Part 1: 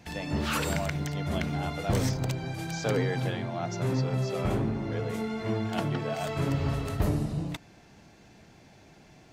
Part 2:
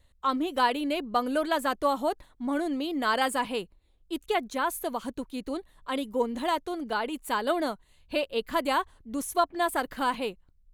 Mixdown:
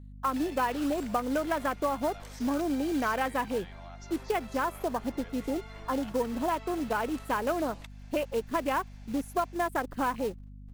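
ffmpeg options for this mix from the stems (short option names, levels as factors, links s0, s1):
-filter_complex "[0:a]highpass=820,acompressor=threshold=0.00631:ratio=6,adelay=300,volume=0.355[s0];[1:a]afwtdn=0.0178,acompressor=threshold=0.0316:ratio=4,acrusher=bits=4:mode=log:mix=0:aa=0.000001,volume=0.708[s1];[s0][s1]amix=inputs=2:normalize=0,acontrast=63,aeval=exprs='val(0)+0.00562*(sin(2*PI*50*n/s)+sin(2*PI*2*50*n/s)/2+sin(2*PI*3*50*n/s)/3+sin(2*PI*4*50*n/s)/4+sin(2*PI*5*50*n/s)/5)':c=same"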